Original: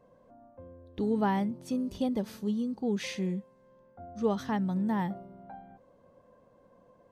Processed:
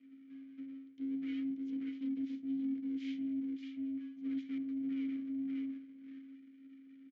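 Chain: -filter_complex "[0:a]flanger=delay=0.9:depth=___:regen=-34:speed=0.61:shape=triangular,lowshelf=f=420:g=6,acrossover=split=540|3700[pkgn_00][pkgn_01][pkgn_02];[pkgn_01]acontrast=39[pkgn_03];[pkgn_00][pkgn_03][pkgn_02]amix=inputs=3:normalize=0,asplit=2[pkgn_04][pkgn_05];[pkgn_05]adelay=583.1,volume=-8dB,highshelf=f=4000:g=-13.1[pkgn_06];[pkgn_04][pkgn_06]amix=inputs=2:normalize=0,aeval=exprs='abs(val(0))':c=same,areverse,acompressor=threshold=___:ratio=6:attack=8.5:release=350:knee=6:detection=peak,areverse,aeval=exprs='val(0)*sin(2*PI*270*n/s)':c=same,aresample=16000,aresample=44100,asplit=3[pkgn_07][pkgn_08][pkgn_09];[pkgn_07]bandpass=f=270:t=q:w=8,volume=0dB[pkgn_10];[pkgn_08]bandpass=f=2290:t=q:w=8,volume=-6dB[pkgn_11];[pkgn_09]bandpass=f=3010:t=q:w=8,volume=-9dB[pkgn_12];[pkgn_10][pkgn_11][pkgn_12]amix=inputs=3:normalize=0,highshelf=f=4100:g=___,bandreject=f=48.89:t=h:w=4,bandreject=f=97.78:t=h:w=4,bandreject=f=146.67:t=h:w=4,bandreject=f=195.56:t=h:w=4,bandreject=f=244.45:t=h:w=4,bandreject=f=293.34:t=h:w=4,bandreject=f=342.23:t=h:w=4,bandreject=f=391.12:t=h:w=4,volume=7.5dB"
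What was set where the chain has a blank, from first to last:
4.8, -38dB, 7.5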